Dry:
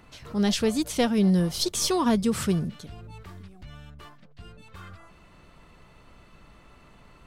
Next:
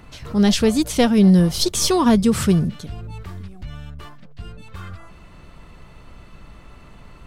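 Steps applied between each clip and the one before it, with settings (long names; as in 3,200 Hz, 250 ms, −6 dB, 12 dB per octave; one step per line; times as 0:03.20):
low-shelf EQ 150 Hz +6.5 dB
level +6 dB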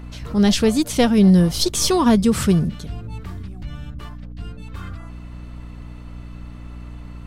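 mains hum 60 Hz, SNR 15 dB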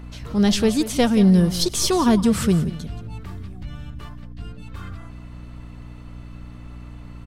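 single-tap delay 176 ms −14 dB
level −2 dB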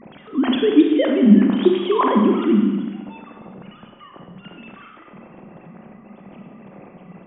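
three sine waves on the formant tracks
four-comb reverb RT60 1.3 s, combs from 31 ms, DRR 2 dB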